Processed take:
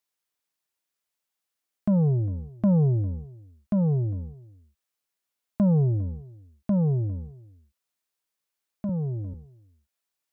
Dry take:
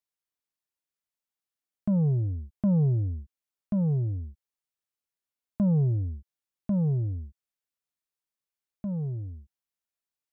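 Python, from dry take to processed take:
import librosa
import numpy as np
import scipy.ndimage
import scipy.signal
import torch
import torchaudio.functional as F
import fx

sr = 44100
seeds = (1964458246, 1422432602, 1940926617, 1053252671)

y = fx.low_shelf(x, sr, hz=230.0, db=-7.0)
y = y + 10.0 ** (-22.5 / 20.0) * np.pad(y, (int(403 * sr / 1000.0), 0))[:len(y)]
y = fx.band_squash(y, sr, depth_pct=70, at=(8.89, 9.34))
y = y * librosa.db_to_amplitude(7.0)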